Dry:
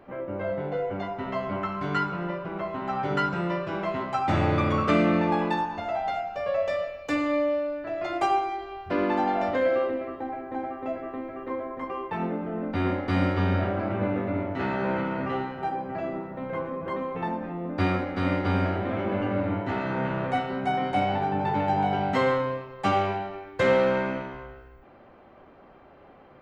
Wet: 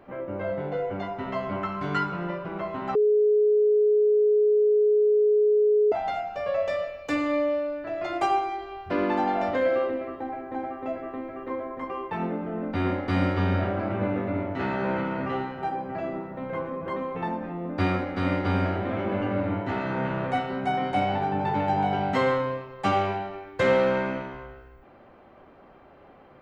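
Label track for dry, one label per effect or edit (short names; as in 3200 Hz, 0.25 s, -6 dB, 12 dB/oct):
2.950000	5.920000	bleep 421 Hz -17 dBFS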